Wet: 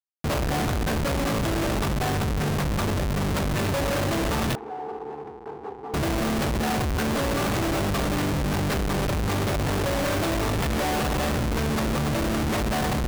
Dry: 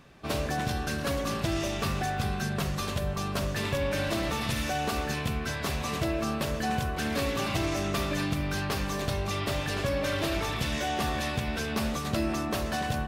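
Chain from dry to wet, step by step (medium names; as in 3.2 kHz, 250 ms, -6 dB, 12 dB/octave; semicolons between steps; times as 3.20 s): Schmitt trigger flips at -30.5 dBFS; 4.55–5.94 s: two resonant band-passes 590 Hz, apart 0.9 oct; trim +5.5 dB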